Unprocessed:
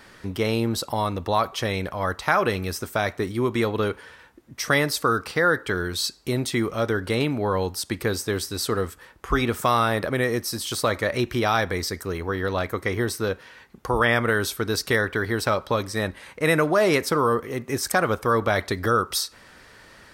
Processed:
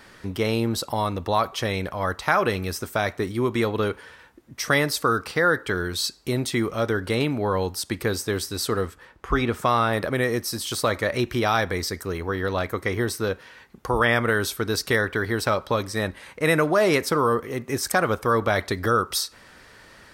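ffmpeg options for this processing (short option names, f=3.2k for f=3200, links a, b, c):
-filter_complex "[0:a]asettb=1/sr,asplit=3[a][b][c];[a]atrim=end=8.864[d];[b]atrim=start=8.86:end=9.93,asetpts=PTS-STARTPTS,afade=t=in:d=0.004:c=qsin,afade=t=out:st=1.066:d=0.004:c=qsin,lowpass=f=4k:p=1[e];[c]atrim=start=9.926[f];[d][e]acrossfade=d=0.004:c1=hsin:c2=qsin[g];[g][f]acrossfade=d=0.004:c1=qsin:c2=hsin"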